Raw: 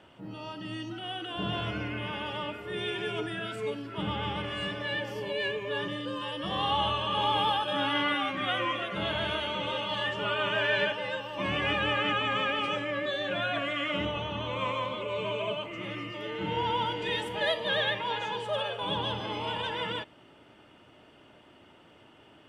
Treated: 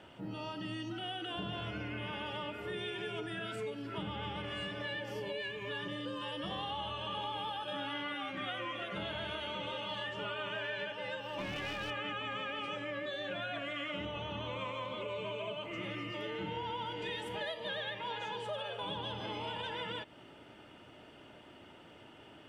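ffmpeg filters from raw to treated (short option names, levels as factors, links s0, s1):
-filter_complex "[0:a]asettb=1/sr,asplit=3[s0][s1][s2];[s0]atrim=end=5.424[s3];[s1]atrim=start=5.42:end=5.86,asetpts=PTS-STARTPTS,afade=t=in:d=0.004:c=qsin,afade=t=out:st=0.436:d=0.004:c=qsin,equalizer=f=520:w=1.5:g=-8[s4];[s2]atrim=start=5.856[s5];[s3][s4]acrossfade=d=0.004:c1=hsin:c2=qsin[s6];[s6][s5]acrossfade=d=0.004:c1=qsin:c2=hsin,asplit=3[s7][s8][s9];[s7]afade=t=out:st=11.26:d=0.02[s10];[s8]aeval=exprs='clip(val(0),-1,0.0355)':c=same,afade=t=in:st=11.26:d=0.02,afade=t=out:st=11.89:d=0.02[s11];[s9]afade=t=in:st=11.89:d=0.02[s12];[s10][s11][s12]amix=inputs=3:normalize=0,bandreject=f=1100:w=14,acompressor=threshold=0.0126:ratio=6,volume=1.12"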